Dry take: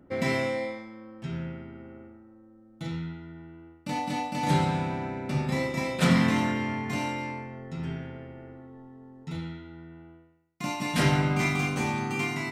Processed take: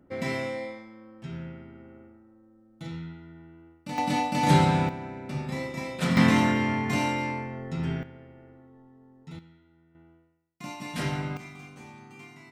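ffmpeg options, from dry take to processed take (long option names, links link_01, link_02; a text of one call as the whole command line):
ffmpeg -i in.wav -af "asetnsamples=nb_out_samples=441:pad=0,asendcmd='3.98 volume volume 4.5dB;4.89 volume volume -4.5dB;6.17 volume volume 4dB;8.03 volume volume -6.5dB;9.39 volume volume -17dB;9.95 volume volume -7dB;11.37 volume volume -18dB',volume=-3.5dB" out.wav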